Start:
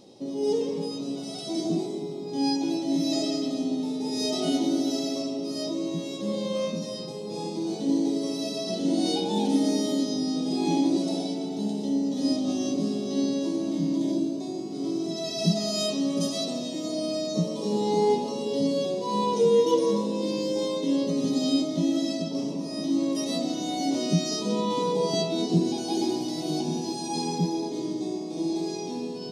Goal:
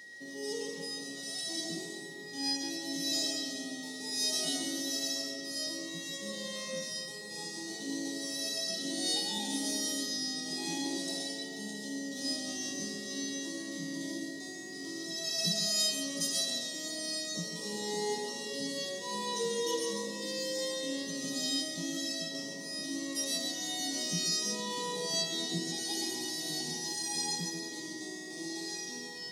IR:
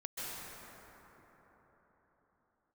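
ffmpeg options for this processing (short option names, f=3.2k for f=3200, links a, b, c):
-filter_complex "[0:a]aeval=exprs='val(0)+0.00891*sin(2*PI*1900*n/s)':c=same,crystalizer=i=8:c=0[a];[1:a]atrim=start_sample=2205,afade=t=out:st=0.19:d=0.01,atrim=end_sample=8820[b];[a][b]afir=irnorm=-1:irlink=0,volume=-9dB"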